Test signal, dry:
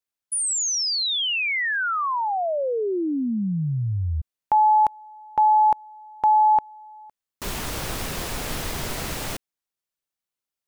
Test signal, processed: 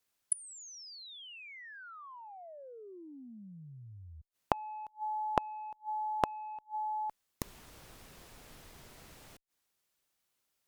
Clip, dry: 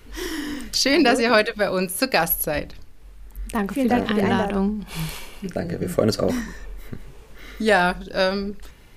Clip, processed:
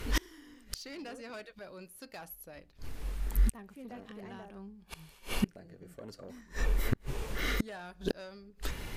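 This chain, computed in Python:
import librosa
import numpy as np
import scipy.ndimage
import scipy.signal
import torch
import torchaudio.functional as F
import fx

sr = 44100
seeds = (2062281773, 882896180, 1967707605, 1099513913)

y = fx.cheby_harmonics(x, sr, harmonics=(5,), levels_db=(-16,), full_scale_db=-4.5)
y = fx.gate_flip(y, sr, shuts_db=-19.0, range_db=-33)
y = y * librosa.db_to_amplitude(3.0)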